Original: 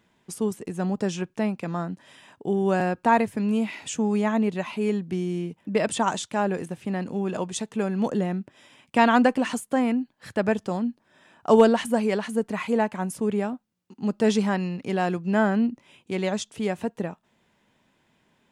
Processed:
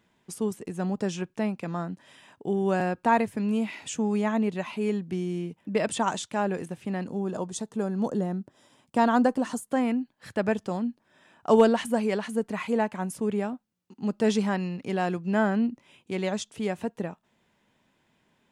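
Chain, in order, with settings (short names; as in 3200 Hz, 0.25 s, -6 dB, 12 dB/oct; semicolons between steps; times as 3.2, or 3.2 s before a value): 7.07–9.67 bell 2400 Hz -12 dB 0.93 oct; gain -2.5 dB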